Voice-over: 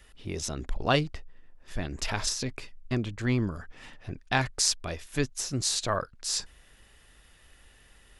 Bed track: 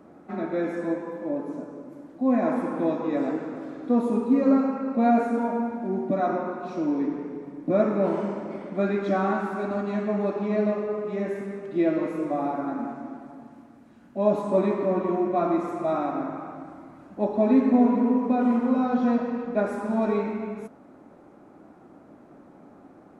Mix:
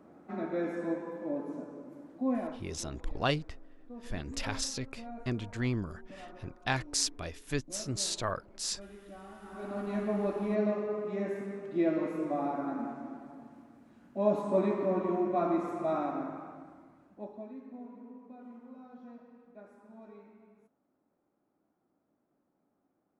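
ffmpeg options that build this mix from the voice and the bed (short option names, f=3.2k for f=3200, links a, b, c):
-filter_complex "[0:a]adelay=2350,volume=-5dB[a];[1:a]volume=13.5dB,afade=t=out:st=2.18:d=0.43:silence=0.112202,afade=t=in:st=9.39:d=0.6:silence=0.105925,afade=t=out:st=15.97:d=1.55:silence=0.0794328[b];[a][b]amix=inputs=2:normalize=0"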